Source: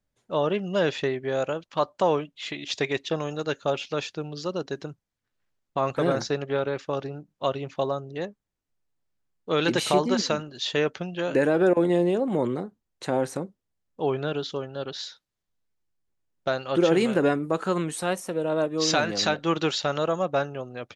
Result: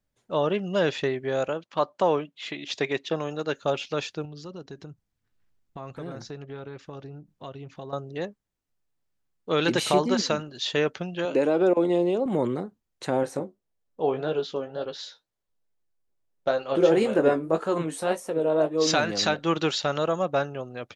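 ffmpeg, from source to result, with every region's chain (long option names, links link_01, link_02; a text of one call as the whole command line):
ffmpeg -i in.wav -filter_complex "[0:a]asettb=1/sr,asplit=3[link_01][link_02][link_03];[link_01]atrim=end=1.484[link_04];[link_02]atrim=start=1.48:end=3.55,asetpts=PTS-STARTPTS,afade=type=in:duration=0.004:curve=qsin,afade=type=out:start_time=2.066:duration=0.004:curve=qsin,highpass=140,highshelf=frequency=5300:gain=-6.5[link_05];[link_03]atrim=start=3.546[link_06];[link_04][link_05]acrossfade=duration=0.004:curve1=hsin:curve2=qsin[link_07];[link_07][link_06]acrossfade=duration=0.004:curve1=qsin:curve2=hsin,asettb=1/sr,asplit=3[link_08][link_09][link_10];[link_08]atrim=end=4.254[link_11];[link_09]atrim=start=4.25:end=7.93,asetpts=PTS-STARTPTS,afade=type=in:duration=0.004:curve=qsin,afade=type=out:start_time=3.676:duration=0.004:curve=qsin,lowshelf=frequency=230:gain=9.5,bandreject=frequency=560:width=14,acompressor=threshold=-46dB:ratio=2:attack=3.2:release=140:knee=1:detection=peak[link_12];[link_10]atrim=start=7.926[link_13];[link_11][link_12]acrossfade=duration=0.004:curve1=hsin:curve2=qsin[link_14];[link_14][link_13]acrossfade=duration=0.004:curve1=qsin:curve2=hsin,asettb=1/sr,asplit=3[link_15][link_16][link_17];[link_15]atrim=end=11.254[link_18];[link_16]atrim=start=11.25:end=12.26,asetpts=PTS-STARTPTS,afade=type=in:duration=0.004:curve=qsin,afade=type=out:start_time=1.006:duration=0.004:curve=qsin,highpass=220,lowpass=6700,equalizer=frequency=1700:width_type=o:width=0.32:gain=-12.5[link_19];[link_17]atrim=start=12.256[link_20];[link_18][link_19]acrossfade=duration=0.004:curve1=hsin:curve2=qsin[link_21];[link_21][link_20]acrossfade=duration=0.004:curve1=qsin:curve2=hsin,asettb=1/sr,asplit=3[link_22][link_23][link_24];[link_22]atrim=end=13.234[link_25];[link_23]atrim=start=13.23:end=18.87,asetpts=PTS-STARTPTS,afade=type=in:duration=0.004:curve=qsin,afade=type=out:start_time=5.636:duration=0.004:curve=qsin,equalizer=frequency=550:width_type=o:width=1.6:gain=6.5,flanger=delay=1.8:depth=9.2:regen=62:speed=1.8:shape=sinusoidal,asplit=2[link_26][link_27];[link_27]adelay=19,volume=-9.5dB[link_28];[link_26][link_28]amix=inputs=2:normalize=0,atrim=end_sample=248724[link_29];[link_24]atrim=start=18.866[link_30];[link_25][link_29]acrossfade=duration=0.004:curve1=hsin:curve2=qsin[link_31];[link_31][link_30]acrossfade=duration=0.004:curve1=qsin:curve2=hsin" out.wav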